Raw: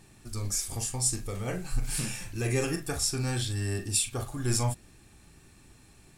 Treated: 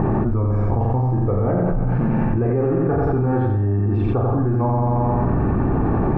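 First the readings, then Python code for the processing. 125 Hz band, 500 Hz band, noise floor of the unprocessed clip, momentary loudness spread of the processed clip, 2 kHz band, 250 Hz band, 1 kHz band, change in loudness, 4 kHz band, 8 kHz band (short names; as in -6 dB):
+15.0 dB, +15.5 dB, -57 dBFS, 1 LU, +2.5 dB, +17.0 dB, +17.5 dB, +10.5 dB, under -20 dB, under -40 dB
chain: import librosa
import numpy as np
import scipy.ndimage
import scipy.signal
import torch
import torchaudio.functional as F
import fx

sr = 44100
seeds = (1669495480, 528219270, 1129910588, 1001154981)

y = scipy.signal.sosfilt(scipy.signal.butter(4, 1100.0, 'lowpass', fs=sr, output='sos'), x)
y = fx.low_shelf(y, sr, hz=79.0, db=-7.5)
y = fx.echo_feedback(y, sr, ms=89, feedback_pct=56, wet_db=-3)
y = fx.env_flatten(y, sr, amount_pct=100)
y = y * 10.0 ** (7.0 / 20.0)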